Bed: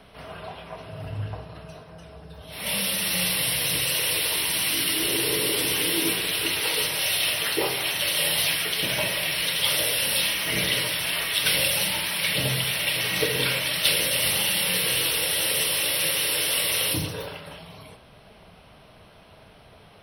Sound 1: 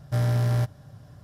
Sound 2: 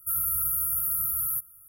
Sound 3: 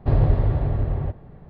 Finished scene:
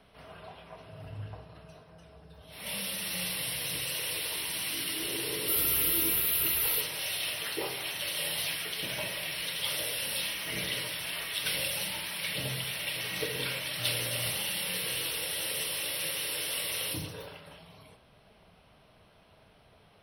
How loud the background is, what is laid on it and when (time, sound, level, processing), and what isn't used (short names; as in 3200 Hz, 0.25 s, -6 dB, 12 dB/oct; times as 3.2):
bed -9.5 dB
5.41 add 2 -1.5 dB
13.66 add 1 -9.5 dB + speaker cabinet 210–6000 Hz, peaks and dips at 220 Hz -7 dB, 430 Hz -7 dB, 780 Hz -4 dB
not used: 3